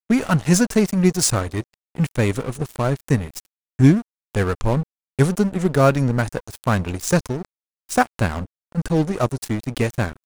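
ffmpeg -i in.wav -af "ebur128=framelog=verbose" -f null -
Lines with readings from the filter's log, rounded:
Integrated loudness:
  I:         -20.8 LUFS
  Threshold: -31.1 LUFS
Loudness range:
  LRA:         3.2 LU
  Threshold: -41.3 LUFS
  LRA low:   -23.2 LUFS
  LRA high:  -19.9 LUFS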